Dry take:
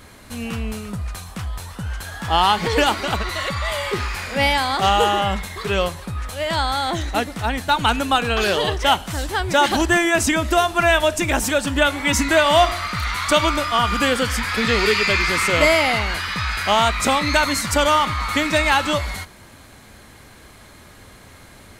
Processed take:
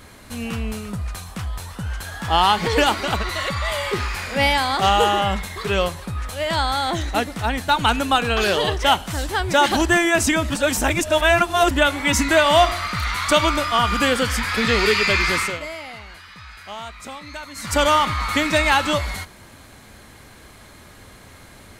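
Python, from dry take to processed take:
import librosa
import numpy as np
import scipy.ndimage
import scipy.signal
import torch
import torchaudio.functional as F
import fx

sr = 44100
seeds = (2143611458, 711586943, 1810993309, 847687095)

y = fx.edit(x, sr, fx.reverse_span(start_s=10.5, length_s=1.21),
    fx.fade_down_up(start_s=15.34, length_s=2.46, db=-17.0, fade_s=0.26), tone=tone)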